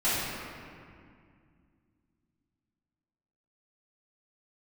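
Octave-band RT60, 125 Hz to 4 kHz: 3.2 s, 3.3 s, 2.2 s, 2.1 s, 2.0 s, 1.4 s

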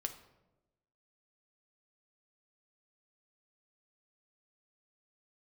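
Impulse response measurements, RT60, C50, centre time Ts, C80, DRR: 1.0 s, 11.0 dB, 11 ms, 14.0 dB, 5.5 dB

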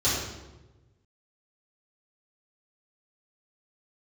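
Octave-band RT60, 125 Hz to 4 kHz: 1.9 s, 1.3 s, 1.3 s, 1.0 s, 0.85 s, 0.75 s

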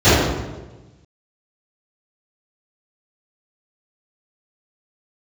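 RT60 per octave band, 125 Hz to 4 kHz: 1.6 s, 1.3 s, 1.3 s, 1.1 s, 0.90 s, 0.85 s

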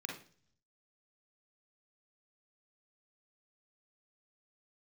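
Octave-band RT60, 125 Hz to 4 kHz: 1.0 s, 0.70 s, 0.50 s, 0.40 s, 0.45 s, 0.60 s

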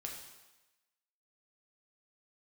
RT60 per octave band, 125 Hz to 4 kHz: 0.85 s, 0.95 s, 1.0 s, 1.1 s, 1.1 s, 1.1 s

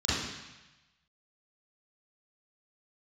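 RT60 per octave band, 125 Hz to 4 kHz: 1.2 s, 1.0 s, 0.90 s, 1.1 s, 1.2 s, 1.2 s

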